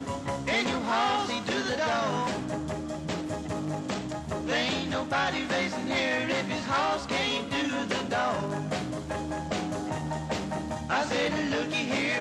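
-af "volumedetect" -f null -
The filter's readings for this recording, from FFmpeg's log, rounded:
mean_volume: -29.6 dB
max_volume: -16.2 dB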